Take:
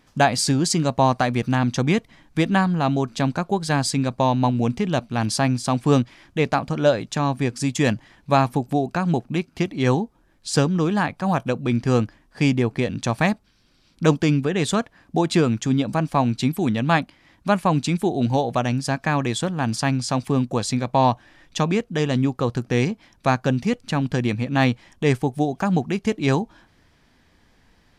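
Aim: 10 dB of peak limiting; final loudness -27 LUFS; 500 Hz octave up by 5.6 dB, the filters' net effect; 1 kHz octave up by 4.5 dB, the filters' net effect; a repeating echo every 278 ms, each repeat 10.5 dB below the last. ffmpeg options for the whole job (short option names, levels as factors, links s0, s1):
-af "equalizer=f=500:t=o:g=6,equalizer=f=1000:t=o:g=3.5,alimiter=limit=0.335:level=0:latency=1,aecho=1:1:278|556|834:0.299|0.0896|0.0269,volume=0.501"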